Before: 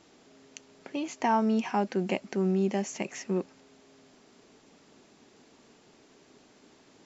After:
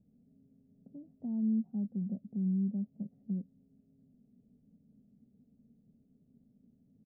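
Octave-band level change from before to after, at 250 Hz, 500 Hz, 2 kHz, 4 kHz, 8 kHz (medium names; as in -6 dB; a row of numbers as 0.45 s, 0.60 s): -3.5 dB, -25.0 dB, under -40 dB, under -35 dB, no reading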